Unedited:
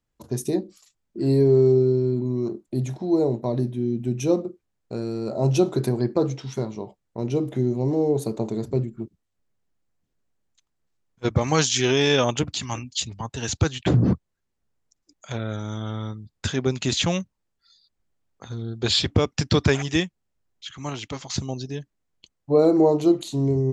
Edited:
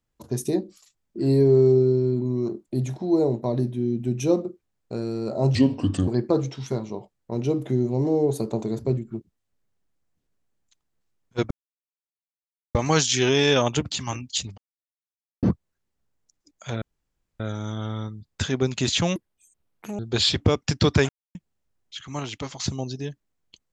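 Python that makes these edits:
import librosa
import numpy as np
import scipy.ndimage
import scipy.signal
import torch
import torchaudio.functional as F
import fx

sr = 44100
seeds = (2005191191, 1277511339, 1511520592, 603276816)

y = fx.edit(x, sr, fx.speed_span(start_s=5.55, length_s=0.39, speed=0.74),
    fx.insert_silence(at_s=11.37, length_s=1.24),
    fx.silence(start_s=13.2, length_s=0.85),
    fx.insert_room_tone(at_s=15.44, length_s=0.58),
    fx.speed_span(start_s=17.2, length_s=1.49, speed=1.79),
    fx.silence(start_s=19.79, length_s=0.26), tone=tone)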